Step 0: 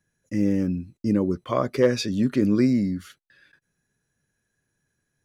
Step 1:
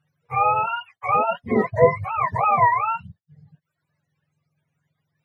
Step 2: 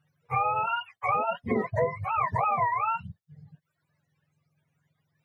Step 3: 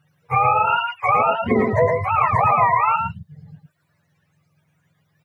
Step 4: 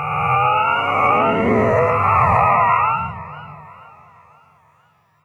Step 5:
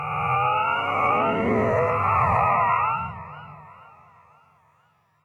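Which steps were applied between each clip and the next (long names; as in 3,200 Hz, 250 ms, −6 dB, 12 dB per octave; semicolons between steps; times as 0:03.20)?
frequency axis turned over on the octave scale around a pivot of 500 Hz; reverb reduction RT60 0.63 s; level +5 dB
downward compressor 8 to 1, threshold −23 dBFS, peak gain reduction 14 dB
single-tap delay 111 ms −4.5 dB; level +8.5 dB
peak hold with a rise ahead of every peak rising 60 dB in 2.29 s; feedback echo with a swinging delay time 489 ms, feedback 43%, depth 110 cents, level −19 dB; level −2 dB
level −5.5 dB; MP3 160 kbit/s 44,100 Hz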